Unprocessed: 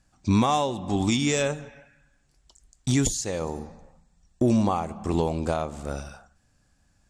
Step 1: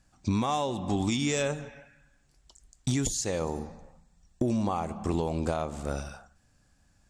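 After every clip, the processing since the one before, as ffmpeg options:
-af "acompressor=threshold=-24dB:ratio=6"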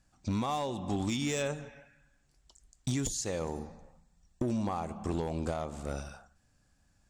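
-af "aeval=exprs='clip(val(0),-1,0.075)':c=same,volume=-4dB"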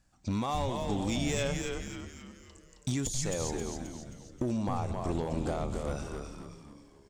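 -filter_complex "[0:a]asplit=7[a][b][c][d][e][f][g];[b]adelay=266,afreqshift=-120,volume=-4dB[h];[c]adelay=532,afreqshift=-240,volume=-10.4dB[i];[d]adelay=798,afreqshift=-360,volume=-16.8dB[j];[e]adelay=1064,afreqshift=-480,volume=-23.1dB[k];[f]adelay=1330,afreqshift=-600,volume=-29.5dB[l];[g]adelay=1596,afreqshift=-720,volume=-35.9dB[m];[a][h][i][j][k][l][m]amix=inputs=7:normalize=0"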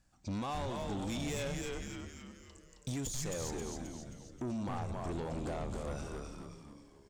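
-af "asoftclip=type=tanh:threshold=-31dB,volume=-2dB"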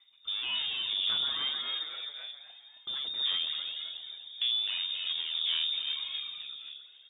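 -filter_complex "[0:a]asplit=2[a][b];[b]acrusher=bits=3:mode=log:mix=0:aa=0.000001,volume=-8dB[c];[a][c]amix=inputs=2:normalize=0,aphaser=in_gain=1:out_gain=1:delay=2.6:decay=0.42:speed=0.9:type=sinusoidal,lowpass=f=3.1k:t=q:w=0.5098,lowpass=f=3.1k:t=q:w=0.6013,lowpass=f=3.1k:t=q:w=0.9,lowpass=f=3.1k:t=q:w=2.563,afreqshift=-3700"

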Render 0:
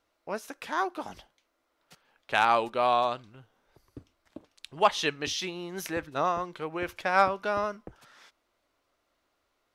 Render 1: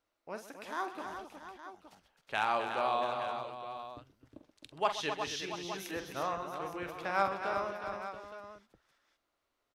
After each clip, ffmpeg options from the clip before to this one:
-af "aecho=1:1:46|129|262|363|681|867:0.335|0.188|0.355|0.398|0.237|0.251,volume=-8.5dB"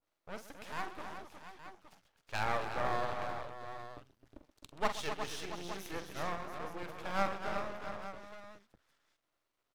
-af "aeval=exprs='max(val(0),0)':c=same,adynamicequalizer=threshold=0.00316:dfrequency=1700:dqfactor=0.7:tfrequency=1700:tqfactor=0.7:attack=5:release=100:ratio=0.375:range=2:mode=cutabove:tftype=highshelf,volume=2dB"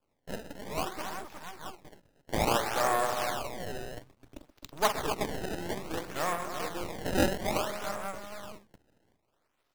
-filter_complex "[0:a]acrossover=split=230|2900[a][b][c];[a]acompressor=threshold=-47dB:ratio=6[d];[d][b][c]amix=inputs=3:normalize=0,acrusher=samples=22:mix=1:aa=0.000001:lfo=1:lforange=35.2:lforate=0.59,volume=7.5dB"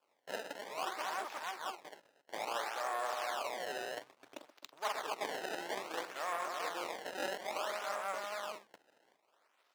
-af "highpass=590,highshelf=f=8k:g=-9.5,areverse,acompressor=threshold=-41dB:ratio=6,areverse,volume=6dB"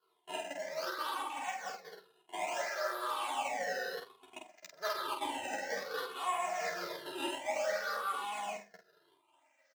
-filter_complex "[0:a]afftfilt=real='re*pow(10,15/40*sin(2*PI*(0.61*log(max(b,1)*sr/1024/100)/log(2)-(-1)*(pts-256)/sr)))':imag='im*pow(10,15/40*sin(2*PI*(0.61*log(max(b,1)*sr/1024/100)/log(2)-(-1)*(pts-256)/sr)))':win_size=1024:overlap=0.75,aecho=1:1:11|49:0.708|0.596,asplit=2[a][b];[b]adelay=2.4,afreqshift=-0.46[c];[a][c]amix=inputs=2:normalize=1"

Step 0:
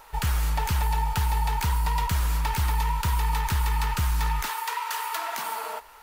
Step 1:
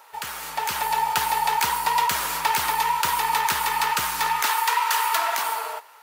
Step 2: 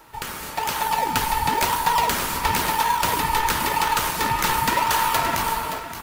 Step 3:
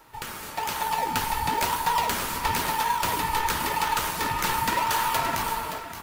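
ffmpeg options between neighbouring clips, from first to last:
-af "highpass=430,dynaudnorm=f=130:g=11:m=8.5dB"
-filter_complex "[0:a]asplit=2[a][b];[b]acrusher=samples=33:mix=1:aa=0.000001:lfo=1:lforange=33:lforate=0.95,volume=-7dB[c];[a][c]amix=inputs=2:normalize=0,aecho=1:1:572:0.316"
-af "flanger=delay=7.3:depth=5.9:regen=-63:speed=0.38:shape=triangular"

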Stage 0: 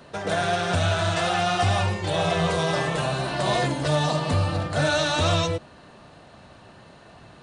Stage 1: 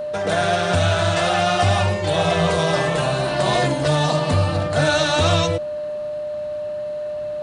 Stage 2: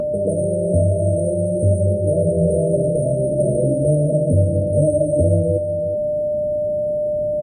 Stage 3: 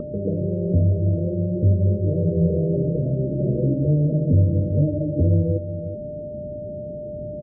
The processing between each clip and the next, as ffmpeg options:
-af "aeval=exprs='val(0)+0.0398*sin(2*PI*600*n/s)':c=same,volume=4dB"
-filter_complex "[0:a]afftfilt=real='re*(1-between(b*sr/4096,650,8400))':imag='im*(1-between(b*sr/4096,650,8400))':win_size=4096:overlap=0.75,aecho=1:1:370:0.168,acrossover=split=400|4600[a][b][c];[a]acompressor=mode=upward:threshold=-23dB:ratio=2.5[d];[d][b][c]amix=inputs=3:normalize=0,volume=3dB"
-af "acompressor=mode=upward:threshold=-28dB:ratio=2.5,asuperstop=centerf=850:order=4:qfactor=0.69,afftfilt=real='re*lt(b*sr/1024,620*pow(2400/620,0.5+0.5*sin(2*PI*1.7*pts/sr)))':imag='im*lt(b*sr/1024,620*pow(2400/620,0.5+0.5*sin(2*PI*1.7*pts/sr)))':win_size=1024:overlap=0.75"

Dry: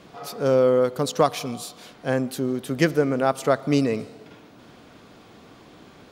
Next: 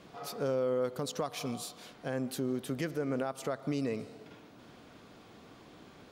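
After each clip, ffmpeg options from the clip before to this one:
-af "alimiter=limit=-17.5dB:level=0:latency=1:release=198,volume=-6dB"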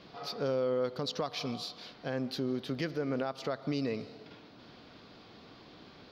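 -af "highshelf=f=6.3k:t=q:w=3:g=-11.5"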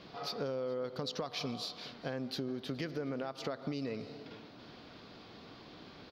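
-filter_complex "[0:a]acompressor=threshold=-35dB:ratio=6,asplit=2[a][b];[b]adelay=419.8,volume=-18dB,highshelf=f=4k:g=-9.45[c];[a][c]amix=inputs=2:normalize=0,volume=1dB"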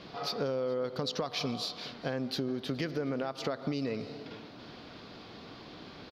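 -af "aresample=32000,aresample=44100,volume=4.5dB"

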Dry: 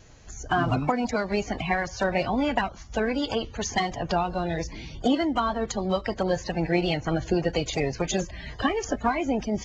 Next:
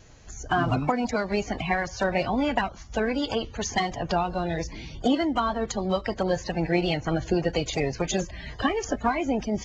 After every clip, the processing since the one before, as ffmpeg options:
-af anull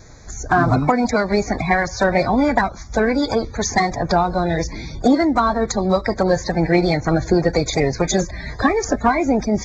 -af "asuperstop=centerf=2900:order=8:qfactor=2.7,acontrast=87,volume=1.5dB"

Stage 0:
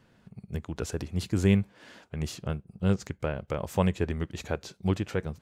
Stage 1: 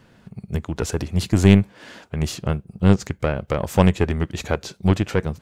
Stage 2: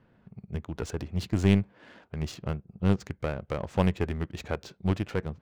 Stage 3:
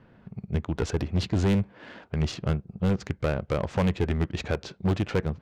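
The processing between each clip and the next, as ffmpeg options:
-af "aeval=exprs='0.282*(cos(1*acos(clip(val(0)/0.282,-1,1)))-cos(1*PI/2))+0.0316*(cos(4*acos(clip(val(0)/0.282,-1,1)))-cos(4*PI/2))':c=same,volume=9dB"
-af "adynamicsmooth=sensitivity=6.5:basefreq=2.4k,volume=-9dB"
-filter_complex "[0:a]lowpass=6.1k,asplit=2[a][b];[b]alimiter=limit=-19dB:level=0:latency=1:release=229,volume=2dB[c];[a][c]amix=inputs=2:normalize=0,volume=19dB,asoftclip=hard,volume=-19dB"

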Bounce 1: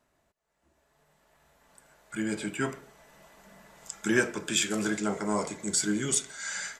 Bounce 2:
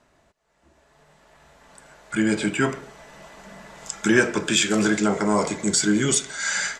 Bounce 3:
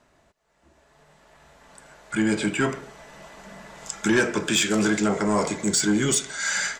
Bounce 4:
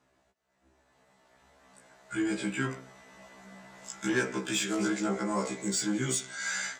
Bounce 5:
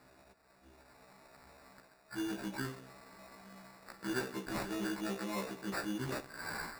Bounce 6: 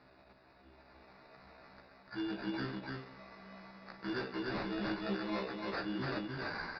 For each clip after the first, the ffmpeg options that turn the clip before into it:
-filter_complex "[0:a]lowpass=7.6k,asplit=2[a][b];[b]alimiter=limit=-23.5dB:level=0:latency=1:release=183,volume=2dB[c];[a][c]amix=inputs=2:normalize=0,volume=4dB"
-af "asoftclip=type=tanh:threshold=-12.5dB"
-af "highpass=70,afftfilt=real='re*1.73*eq(mod(b,3),0)':imag='im*1.73*eq(mod(b,3),0)':win_size=2048:overlap=0.75,volume=-6dB"
-af "areverse,acompressor=mode=upward:threshold=-39dB:ratio=2.5,areverse,acrusher=samples=14:mix=1:aa=0.000001,volume=-8dB"
-af "aresample=11025,asoftclip=type=hard:threshold=-33dB,aresample=44100,aecho=1:1:295:0.708"

